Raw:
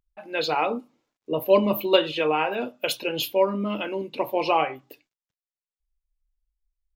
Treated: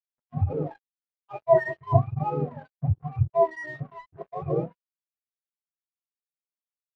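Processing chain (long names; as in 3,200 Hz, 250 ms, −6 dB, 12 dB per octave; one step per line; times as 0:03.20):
frequency axis turned over on the octave scale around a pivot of 620 Hz
dead-zone distortion −35.5 dBFS
every bin expanded away from the loudest bin 1.5 to 1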